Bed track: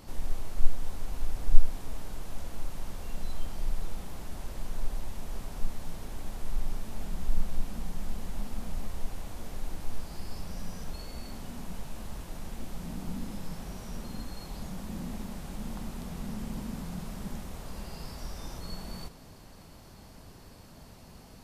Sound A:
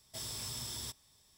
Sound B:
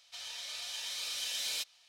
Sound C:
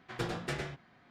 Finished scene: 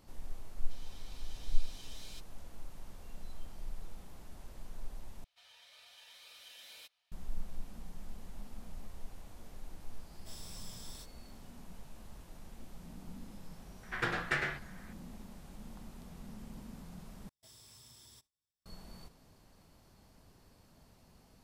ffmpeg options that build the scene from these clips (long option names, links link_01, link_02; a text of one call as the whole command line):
ffmpeg -i bed.wav -i cue0.wav -i cue1.wav -i cue2.wav -filter_complex "[2:a]asplit=2[link_01][link_02];[1:a]asplit=2[link_03][link_04];[0:a]volume=-11.5dB[link_05];[link_02]equalizer=frequency=6400:width_type=o:width=1.5:gain=-11.5[link_06];[link_03]flanger=delay=19.5:depth=7.7:speed=2[link_07];[3:a]equalizer=frequency=1700:width_type=o:width=1.4:gain=14[link_08];[link_04]agate=range=-33dB:threshold=-58dB:ratio=3:release=100:detection=peak[link_09];[link_05]asplit=3[link_10][link_11][link_12];[link_10]atrim=end=5.244[link_13];[link_06]atrim=end=1.88,asetpts=PTS-STARTPTS,volume=-11.5dB[link_14];[link_11]atrim=start=7.116:end=17.294[link_15];[link_09]atrim=end=1.37,asetpts=PTS-STARTPTS,volume=-16.5dB[link_16];[link_12]atrim=start=18.656[link_17];[link_01]atrim=end=1.88,asetpts=PTS-STARTPTS,volume=-17dB,afade=type=in:duration=0.004:curve=hsin,afade=type=out:start_time=1.876:duration=0.004:curve=hsin,adelay=570[link_18];[link_07]atrim=end=1.37,asetpts=PTS-STARTPTS,volume=-6.5dB,afade=type=in:duration=0.004:curve=hsin,afade=type=out:start_time=1.366:duration=0.004:curve=hsin,adelay=10120[link_19];[link_08]atrim=end=1.1,asetpts=PTS-STARTPTS,volume=-4dB,afade=type=in:duration=0.004:curve=hsin,afade=type=out:start_time=1.096:duration=0.004:curve=hsin,adelay=13830[link_20];[link_13][link_14]acrossfade=duration=0.004:curve1=hsin:curve2=hsin[link_21];[link_21][link_15]acrossfade=duration=0.004:curve1=hsin:curve2=hsin[link_22];[link_22][link_16]acrossfade=duration=0.004:curve1=hsin:curve2=hsin[link_23];[link_23][link_17]acrossfade=duration=0.004:curve1=hsin:curve2=hsin[link_24];[link_24][link_18][link_19][link_20]amix=inputs=4:normalize=0" out.wav